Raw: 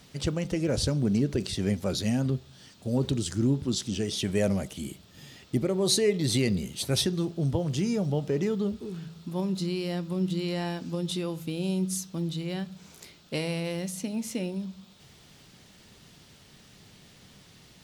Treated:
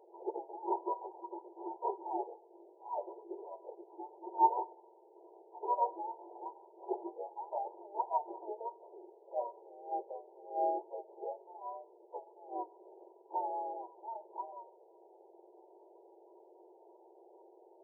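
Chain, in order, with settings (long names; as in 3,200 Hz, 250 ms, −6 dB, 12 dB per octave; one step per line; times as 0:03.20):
frequency axis turned over on the octave scale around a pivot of 750 Hz
brick-wall band-pass 330–990 Hz
level +7.5 dB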